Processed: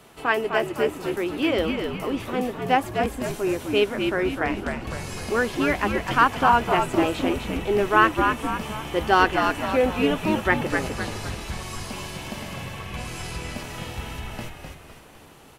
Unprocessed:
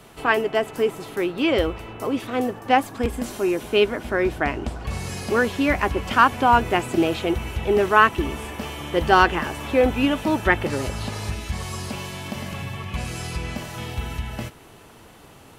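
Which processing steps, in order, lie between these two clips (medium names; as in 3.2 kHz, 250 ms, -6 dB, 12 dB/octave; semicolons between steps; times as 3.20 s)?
bass shelf 130 Hz -5.5 dB; on a send: frequency-shifting echo 254 ms, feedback 45%, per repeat -71 Hz, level -5 dB; on the sum: trim -2.5 dB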